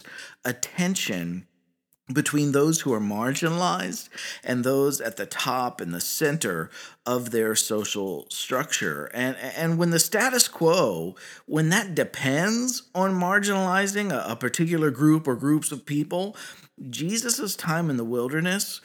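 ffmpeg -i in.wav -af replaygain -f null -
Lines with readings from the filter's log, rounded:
track_gain = +5.5 dB
track_peak = 0.548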